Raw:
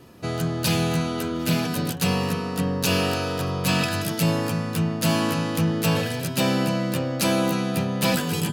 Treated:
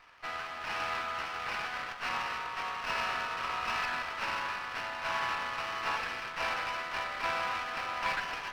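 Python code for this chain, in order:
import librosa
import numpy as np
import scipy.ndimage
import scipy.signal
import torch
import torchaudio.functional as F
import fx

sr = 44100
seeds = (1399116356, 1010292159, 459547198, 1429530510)

p1 = fx.cvsd(x, sr, bps=16000)
p2 = scipy.signal.sosfilt(scipy.signal.butter(4, 940.0, 'highpass', fs=sr, output='sos'), p1)
p3 = p2 + fx.echo_single(p2, sr, ms=539, db=-6.0, dry=0)
y = fx.running_max(p3, sr, window=5)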